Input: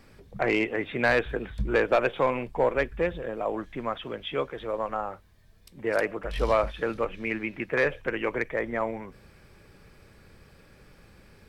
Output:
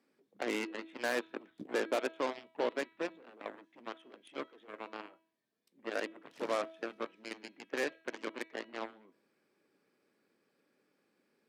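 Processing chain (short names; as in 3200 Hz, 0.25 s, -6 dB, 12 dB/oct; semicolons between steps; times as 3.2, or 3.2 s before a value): added harmonics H 6 -32 dB, 7 -14 dB, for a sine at -12.5 dBFS; ladder high-pass 230 Hz, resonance 45%; de-hum 325.1 Hz, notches 13; gain -3.5 dB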